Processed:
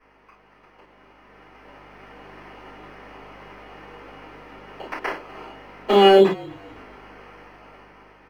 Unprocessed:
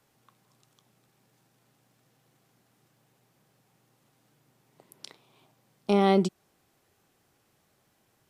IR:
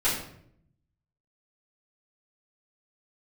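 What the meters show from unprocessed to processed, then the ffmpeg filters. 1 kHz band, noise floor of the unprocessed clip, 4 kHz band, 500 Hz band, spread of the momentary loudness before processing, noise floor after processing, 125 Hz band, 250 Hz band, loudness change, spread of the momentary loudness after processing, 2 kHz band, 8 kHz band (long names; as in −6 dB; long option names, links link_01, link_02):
+10.0 dB, −70 dBFS, +15.0 dB, +11.5 dB, 13 LU, −56 dBFS, +0.5 dB, +4.0 dB, +7.0 dB, 22 LU, +12.5 dB, can't be measured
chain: -filter_complex "[0:a]alimiter=limit=-14.5dB:level=0:latency=1:release=415,highshelf=frequency=6100:gain=7,acrusher=samples=12:mix=1:aa=0.000001,aeval=exprs='val(0)+0.000794*(sin(2*PI*50*n/s)+sin(2*PI*2*50*n/s)/2+sin(2*PI*3*50*n/s)/3+sin(2*PI*4*50*n/s)/4+sin(2*PI*5*50*n/s)/5)':channel_layout=same,bandreject=frequency=1500:width=17,acompressor=threshold=-53dB:ratio=1.5,acrossover=split=240 3500:gain=0.112 1 0.0891[link_01][link_02][link_03];[link_01][link_02][link_03]amix=inputs=3:normalize=0,asplit=4[link_04][link_05][link_06][link_07];[link_05]adelay=250,afreqshift=-46,volume=-22dB[link_08];[link_06]adelay=500,afreqshift=-92,volume=-30.2dB[link_09];[link_07]adelay=750,afreqshift=-138,volume=-38.4dB[link_10];[link_04][link_08][link_09][link_10]amix=inputs=4:normalize=0[link_11];[1:a]atrim=start_sample=2205,atrim=end_sample=3087[link_12];[link_11][link_12]afir=irnorm=-1:irlink=0,dynaudnorm=framelen=310:gausssize=11:maxgain=14dB,volume=2dB"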